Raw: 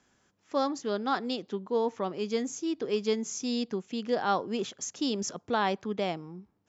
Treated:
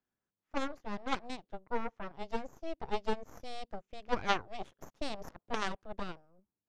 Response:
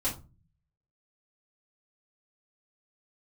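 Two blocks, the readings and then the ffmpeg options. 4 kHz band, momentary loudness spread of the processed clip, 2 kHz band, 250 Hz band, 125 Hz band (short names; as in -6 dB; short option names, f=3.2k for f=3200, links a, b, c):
-7.0 dB, 12 LU, -2.5 dB, -11.5 dB, -8.0 dB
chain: -af "aeval=exprs='0.211*(cos(1*acos(clip(val(0)/0.211,-1,1)))-cos(1*PI/2))+0.0668*(cos(3*acos(clip(val(0)/0.211,-1,1)))-cos(3*PI/2))+0.0376*(cos(4*acos(clip(val(0)/0.211,-1,1)))-cos(4*PI/2))':c=same,aemphasis=mode=reproduction:type=75fm,volume=3.5dB"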